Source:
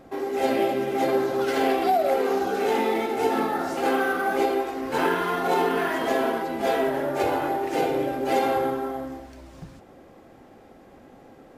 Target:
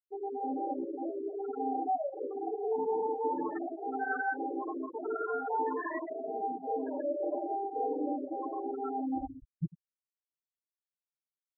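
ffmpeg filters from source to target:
-filter_complex "[0:a]afftfilt=real='re*pow(10,10/40*sin(2*PI*(1.2*log(max(b,1)*sr/1024/100)/log(2)-(0.81)*(pts-256)/sr)))':imag='im*pow(10,10/40*sin(2*PI*(1.2*log(max(b,1)*sr/1024/100)/log(2)-(0.81)*(pts-256)/sr)))':win_size=1024:overlap=0.75,asplit=2[a][b];[b]acrusher=bits=5:mix=0:aa=0.000001,volume=-7dB[c];[a][c]amix=inputs=2:normalize=0,asplit=3[d][e][f];[e]adelay=106,afreqshift=31,volume=-19.5dB[g];[f]adelay=212,afreqshift=62,volume=-30dB[h];[d][g][h]amix=inputs=3:normalize=0,volume=8.5dB,asoftclip=hard,volume=-8.5dB,areverse,acompressor=threshold=-32dB:ratio=12,areverse,afftfilt=real='re*gte(hypot(re,im),0.0631)':imag='im*gte(hypot(re,im),0.0631)':win_size=1024:overlap=0.75,aecho=1:1:6.6:0.99"

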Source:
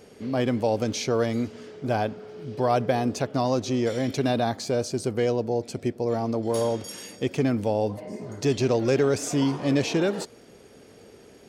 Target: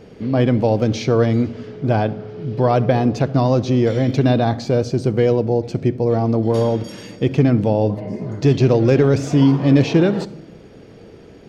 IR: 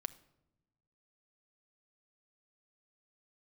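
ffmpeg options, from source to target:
-filter_complex "[0:a]asplit=2[a][b];[1:a]atrim=start_sample=2205,lowpass=5.2k,lowshelf=f=270:g=11.5[c];[b][c]afir=irnorm=-1:irlink=0,volume=11.5dB[d];[a][d]amix=inputs=2:normalize=0,volume=-7dB"

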